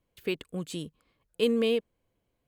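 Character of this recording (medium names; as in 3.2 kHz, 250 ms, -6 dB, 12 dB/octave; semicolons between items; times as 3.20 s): noise floor -79 dBFS; spectral tilt -4.0 dB/octave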